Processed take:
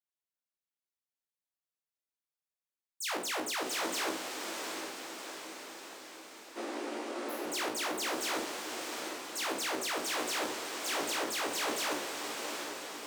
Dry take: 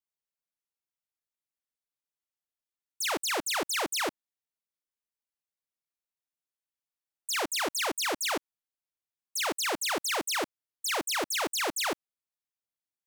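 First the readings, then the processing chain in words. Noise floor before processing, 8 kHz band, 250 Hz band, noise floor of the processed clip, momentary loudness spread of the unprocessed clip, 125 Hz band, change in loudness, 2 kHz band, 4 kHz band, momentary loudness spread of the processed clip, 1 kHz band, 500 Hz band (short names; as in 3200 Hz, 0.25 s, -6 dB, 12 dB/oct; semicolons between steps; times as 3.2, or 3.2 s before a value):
under -85 dBFS, -3.5 dB, 0.0 dB, under -85 dBFS, 6 LU, -2.5 dB, -5.5 dB, -3.5 dB, -3.5 dB, 11 LU, -2.5 dB, -1.5 dB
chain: spectral trails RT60 0.46 s; HPF 130 Hz 12 dB/oct; spectral repair 6.59–7.44, 220–10000 Hz after; chorus 0.22 Hz, delay 15 ms, depth 2.1 ms; on a send: diffused feedback echo 0.73 s, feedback 59%, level -5 dB; on the sum: gain -4.5 dB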